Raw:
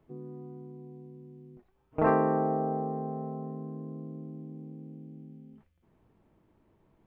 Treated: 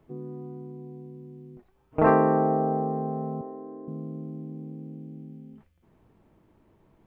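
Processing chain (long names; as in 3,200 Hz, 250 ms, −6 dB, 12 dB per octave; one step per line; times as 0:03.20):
0:03.41–0:03.88: Chebyshev band-pass filter 300–1,900 Hz, order 3
level +5 dB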